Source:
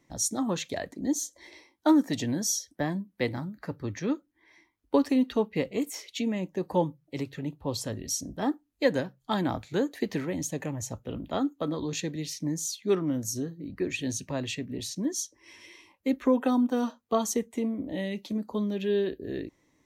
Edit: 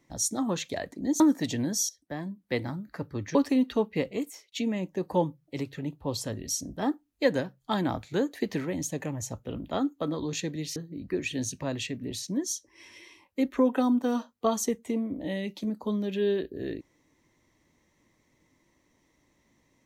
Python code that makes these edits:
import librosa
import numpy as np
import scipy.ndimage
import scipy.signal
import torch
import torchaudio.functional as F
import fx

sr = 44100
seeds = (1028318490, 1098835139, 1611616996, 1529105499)

y = fx.edit(x, sr, fx.cut(start_s=1.2, length_s=0.69),
    fx.fade_in_from(start_s=2.58, length_s=0.73, floor_db=-14.5),
    fx.cut(start_s=4.04, length_s=0.91),
    fx.fade_out_span(start_s=5.7, length_s=0.42),
    fx.cut(start_s=12.36, length_s=1.08), tone=tone)